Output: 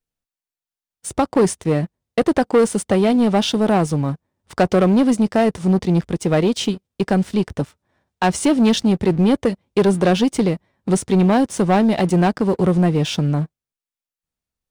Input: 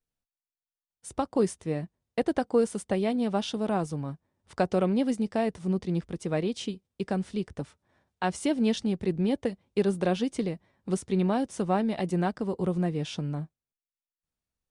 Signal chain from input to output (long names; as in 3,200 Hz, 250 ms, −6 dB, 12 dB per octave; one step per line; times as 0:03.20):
leveller curve on the samples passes 2
level +6 dB